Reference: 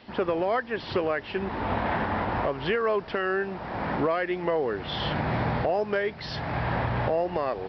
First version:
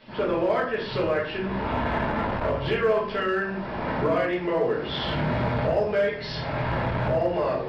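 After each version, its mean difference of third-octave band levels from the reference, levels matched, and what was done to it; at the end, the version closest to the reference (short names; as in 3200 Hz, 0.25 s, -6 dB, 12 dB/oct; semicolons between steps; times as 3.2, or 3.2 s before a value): 3.5 dB: shoebox room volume 69 m³, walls mixed, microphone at 1.5 m; in parallel at -6 dB: hard clip -15 dBFS, distortion -14 dB; on the sum: notch 750 Hz, Q 12; core saturation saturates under 240 Hz; gain -8 dB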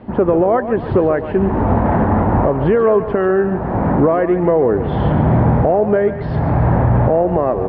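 6.5 dB: LPF 1100 Hz 12 dB/oct; low shelf 430 Hz +9 dB; in parallel at +2.5 dB: limiter -18 dBFS, peak gain reduction 7 dB; on the sum: thinning echo 0.14 s, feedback 52%, level -10 dB; gain +3 dB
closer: first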